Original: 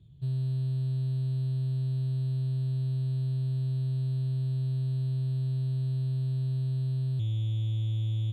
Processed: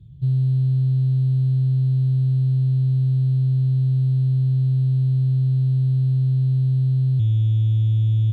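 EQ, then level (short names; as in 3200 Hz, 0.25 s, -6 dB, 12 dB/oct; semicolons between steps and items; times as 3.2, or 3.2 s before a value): tone controls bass +10 dB, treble -2 dB; +1.5 dB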